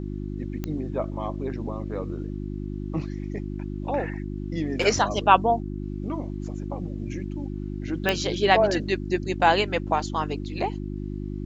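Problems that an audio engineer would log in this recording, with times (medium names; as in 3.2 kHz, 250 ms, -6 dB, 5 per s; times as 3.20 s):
hum 50 Hz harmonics 7 -32 dBFS
0.64 s: pop -16 dBFS
8.09 s: pop -8 dBFS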